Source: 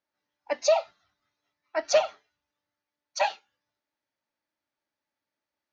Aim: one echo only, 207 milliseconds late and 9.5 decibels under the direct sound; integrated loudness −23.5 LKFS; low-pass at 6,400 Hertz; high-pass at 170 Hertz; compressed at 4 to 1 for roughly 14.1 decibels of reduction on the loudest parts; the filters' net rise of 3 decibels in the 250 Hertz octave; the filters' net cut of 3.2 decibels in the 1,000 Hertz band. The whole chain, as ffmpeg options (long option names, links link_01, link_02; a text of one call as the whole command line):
ffmpeg -i in.wav -af "highpass=170,lowpass=6400,equalizer=frequency=250:width_type=o:gain=5,equalizer=frequency=1000:width_type=o:gain=-5,acompressor=threshold=-35dB:ratio=4,aecho=1:1:207:0.335,volume=16.5dB" out.wav